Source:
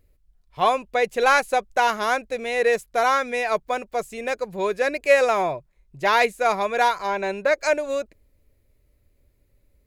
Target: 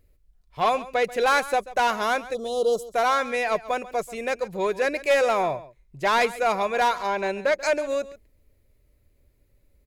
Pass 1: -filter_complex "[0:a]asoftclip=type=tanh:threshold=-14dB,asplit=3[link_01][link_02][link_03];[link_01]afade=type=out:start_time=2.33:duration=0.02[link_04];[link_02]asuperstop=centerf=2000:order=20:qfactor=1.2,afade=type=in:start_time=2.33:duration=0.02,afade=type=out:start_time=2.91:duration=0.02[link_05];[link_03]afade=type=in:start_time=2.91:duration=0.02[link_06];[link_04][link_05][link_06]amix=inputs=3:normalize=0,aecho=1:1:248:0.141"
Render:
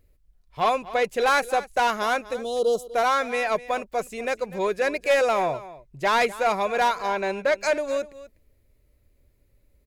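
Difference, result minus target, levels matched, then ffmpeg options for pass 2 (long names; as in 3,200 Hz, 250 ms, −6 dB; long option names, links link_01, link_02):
echo 111 ms late
-filter_complex "[0:a]asoftclip=type=tanh:threshold=-14dB,asplit=3[link_01][link_02][link_03];[link_01]afade=type=out:start_time=2.33:duration=0.02[link_04];[link_02]asuperstop=centerf=2000:order=20:qfactor=1.2,afade=type=in:start_time=2.33:duration=0.02,afade=type=out:start_time=2.91:duration=0.02[link_05];[link_03]afade=type=in:start_time=2.91:duration=0.02[link_06];[link_04][link_05][link_06]amix=inputs=3:normalize=0,aecho=1:1:137:0.141"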